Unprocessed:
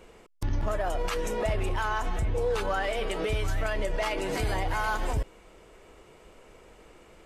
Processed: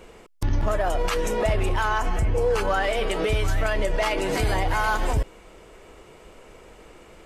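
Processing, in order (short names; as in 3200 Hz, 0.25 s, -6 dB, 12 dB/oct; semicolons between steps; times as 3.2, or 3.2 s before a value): 1.98–2.68 notch 3700 Hz, Q 5.5; gain +5.5 dB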